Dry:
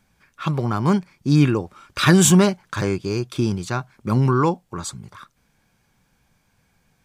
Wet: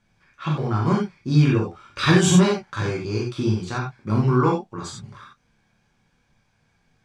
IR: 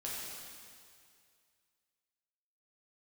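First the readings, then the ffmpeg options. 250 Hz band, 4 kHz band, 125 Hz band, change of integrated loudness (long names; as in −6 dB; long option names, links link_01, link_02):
−2.0 dB, −1.5 dB, −0.5 dB, −1.5 dB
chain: -filter_complex "[0:a]lowpass=6100[link_01];[1:a]atrim=start_sample=2205,atrim=end_sample=4410[link_02];[link_01][link_02]afir=irnorm=-1:irlink=0"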